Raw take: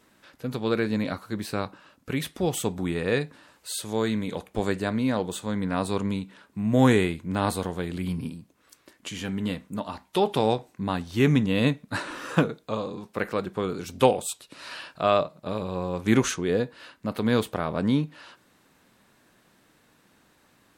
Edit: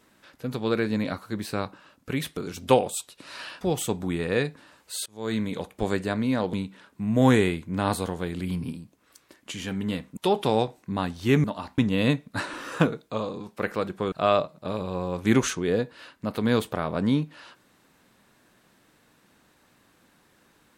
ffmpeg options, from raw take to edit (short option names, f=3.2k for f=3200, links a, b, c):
-filter_complex "[0:a]asplit=9[a][b][c][d][e][f][g][h][i];[a]atrim=end=2.372[j];[b]atrim=start=13.688:end=14.932[k];[c]atrim=start=2.368:end=3.82,asetpts=PTS-STARTPTS,afade=t=out:st=1.448:d=0.004:c=hsin:silence=0.0630957[l];[d]atrim=start=3.82:end=5.292,asetpts=PTS-STARTPTS,afade=t=in:d=0.28:c=qua:silence=0.0630957[m];[e]atrim=start=6.098:end=9.742[n];[f]atrim=start=10.078:end=11.352[o];[g]atrim=start=9.738:end=10.082[p];[h]atrim=start=11.348:end=13.692[q];[i]atrim=start=14.928[r];[j][k]acrossfade=d=0.004:c1=hsin:c2=hsin[s];[l][m]concat=n=2:v=0:a=1[t];[s][t]acrossfade=d=0.004:c1=hsin:c2=hsin[u];[u][n]acrossfade=d=0.004:c1=hsin:c2=hsin[v];[v][o]acrossfade=d=0.004:c1=hsin:c2=hsin[w];[w][p]acrossfade=d=0.004:c1=hsin:c2=hsin[x];[x][q]acrossfade=d=0.004:c1=hsin:c2=hsin[y];[y][r]acrossfade=d=0.004:c1=hsin:c2=hsin"